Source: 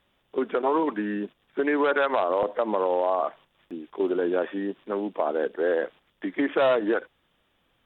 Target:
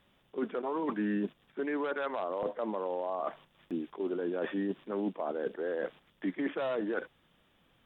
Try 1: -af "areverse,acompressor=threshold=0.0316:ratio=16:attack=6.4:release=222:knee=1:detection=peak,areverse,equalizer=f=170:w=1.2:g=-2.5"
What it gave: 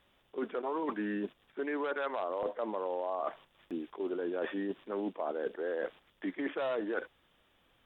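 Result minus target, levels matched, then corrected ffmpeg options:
125 Hz band -5.5 dB
-af "areverse,acompressor=threshold=0.0316:ratio=16:attack=6.4:release=222:knee=1:detection=peak,areverse,equalizer=f=170:w=1.2:g=5.5"

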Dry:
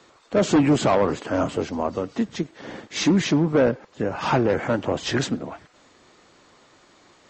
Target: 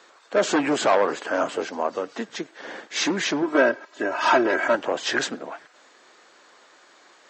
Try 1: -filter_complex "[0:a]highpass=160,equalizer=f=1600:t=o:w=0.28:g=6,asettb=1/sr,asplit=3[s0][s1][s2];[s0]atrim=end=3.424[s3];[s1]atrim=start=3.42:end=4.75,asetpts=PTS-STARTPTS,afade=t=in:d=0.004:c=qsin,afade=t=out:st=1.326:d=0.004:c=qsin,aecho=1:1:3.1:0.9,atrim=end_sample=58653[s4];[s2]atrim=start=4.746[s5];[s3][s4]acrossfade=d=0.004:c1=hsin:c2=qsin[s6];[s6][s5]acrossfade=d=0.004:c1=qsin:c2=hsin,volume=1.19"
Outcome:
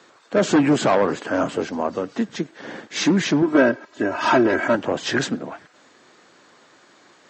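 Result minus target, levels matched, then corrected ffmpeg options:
125 Hz band +11.5 dB
-filter_complex "[0:a]highpass=430,equalizer=f=1600:t=o:w=0.28:g=6,asettb=1/sr,asplit=3[s0][s1][s2];[s0]atrim=end=3.424[s3];[s1]atrim=start=3.42:end=4.75,asetpts=PTS-STARTPTS,afade=t=in:d=0.004:c=qsin,afade=t=out:st=1.326:d=0.004:c=qsin,aecho=1:1:3.1:0.9,atrim=end_sample=58653[s4];[s2]atrim=start=4.746[s5];[s3][s4]acrossfade=d=0.004:c1=hsin:c2=qsin[s6];[s6][s5]acrossfade=d=0.004:c1=qsin:c2=hsin,volume=1.19"

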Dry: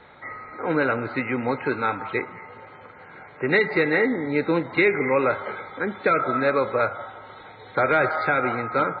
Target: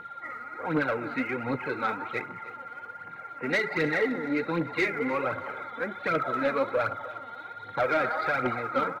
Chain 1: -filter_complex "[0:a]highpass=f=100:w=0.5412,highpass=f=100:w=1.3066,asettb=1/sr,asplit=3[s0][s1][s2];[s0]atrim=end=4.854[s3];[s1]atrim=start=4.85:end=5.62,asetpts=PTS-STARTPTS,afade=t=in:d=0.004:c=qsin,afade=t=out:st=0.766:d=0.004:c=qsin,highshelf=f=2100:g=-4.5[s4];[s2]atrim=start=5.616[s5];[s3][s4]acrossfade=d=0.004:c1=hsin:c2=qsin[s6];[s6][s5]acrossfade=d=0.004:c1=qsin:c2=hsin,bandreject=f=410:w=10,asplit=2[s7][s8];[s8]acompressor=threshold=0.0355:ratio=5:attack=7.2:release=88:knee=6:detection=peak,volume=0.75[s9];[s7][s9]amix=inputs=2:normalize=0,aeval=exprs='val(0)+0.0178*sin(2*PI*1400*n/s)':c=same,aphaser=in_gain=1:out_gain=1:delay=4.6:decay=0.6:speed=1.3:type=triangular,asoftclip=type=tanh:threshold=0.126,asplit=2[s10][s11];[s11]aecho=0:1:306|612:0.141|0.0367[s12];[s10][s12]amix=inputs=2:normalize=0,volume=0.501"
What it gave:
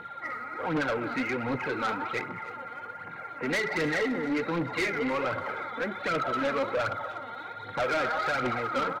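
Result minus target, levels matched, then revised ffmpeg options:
compression: peak gain reduction +12.5 dB; saturation: distortion +9 dB
-filter_complex "[0:a]highpass=f=100:w=0.5412,highpass=f=100:w=1.3066,asettb=1/sr,asplit=3[s0][s1][s2];[s0]atrim=end=4.854[s3];[s1]atrim=start=4.85:end=5.62,asetpts=PTS-STARTPTS,afade=t=in:d=0.004:c=qsin,afade=t=out:st=0.766:d=0.004:c=qsin,highshelf=f=2100:g=-4.5[s4];[s2]atrim=start=5.616[s5];[s3][s4]acrossfade=d=0.004:c1=hsin:c2=qsin[s6];[s6][s5]acrossfade=d=0.004:c1=qsin:c2=hsin,bandreject=f=410:w=10,aeval=exprs='val(0)+0.0178*sin(2*PI*1400*n/s)':c=same,aphaser=in_gain=1:out_gain=1:delay=4.6:decay=0.6:speed=1.3:type=triangular,asoftclip=type=tanh:threshold=0.266,asplit=2[s7][s8];[s8]aecho=0:1:306|612:0.141|0.0367[s9];[s7][s9]amix=inputs=2:normalize=0,volume=0.501"

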